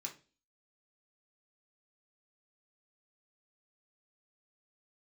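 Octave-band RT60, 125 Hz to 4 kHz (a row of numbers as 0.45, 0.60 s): 0.40, 0.45, 0.40, 0.30, 0.30, 0.35 s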